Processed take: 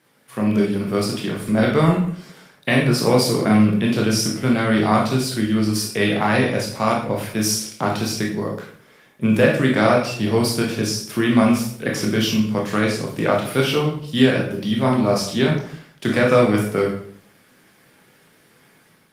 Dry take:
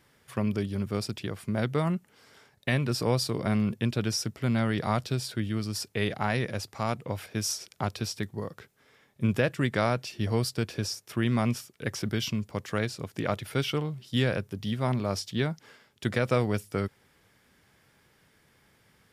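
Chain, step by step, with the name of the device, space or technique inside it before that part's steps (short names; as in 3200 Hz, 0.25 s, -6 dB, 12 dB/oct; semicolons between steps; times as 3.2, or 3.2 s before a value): far-field microphone of a smart speaker (reverb RT60 0.60 s, pre-delay 17 ms, DRR -2 dB; HPF 140 Hz 24 dB/oct; AGC gain up to 6 dB; gain +2 dB; Opus 32 kbps 48000 Hz)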